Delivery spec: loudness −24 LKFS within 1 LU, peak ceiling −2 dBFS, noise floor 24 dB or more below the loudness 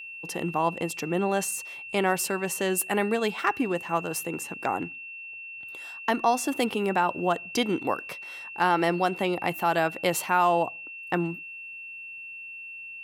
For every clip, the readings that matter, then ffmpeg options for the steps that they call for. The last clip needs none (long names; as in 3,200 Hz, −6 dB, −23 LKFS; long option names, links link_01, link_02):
interfering tone 2,700 Hz; level of the tone −38 dBFS; integrated loudness −27.0 LKFS; sample peak −10.5 dBFS; target loudness −24.0 LKFS
→ -af "bandreject=frequency=2700:width=30"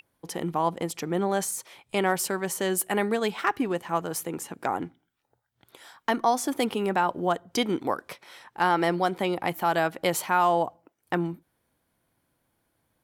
interfering tone none found; integrated loudness −27.0 LKFS; sample peak −11.0 dBFS; target loudness −24.0 LKFS
→ -af "volume=3dB"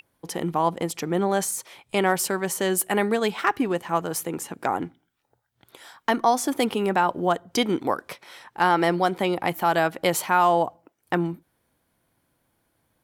integrated loudness −24.5 LKFS; sample peak −8.0 dBFS; background noise floor −73 dBFS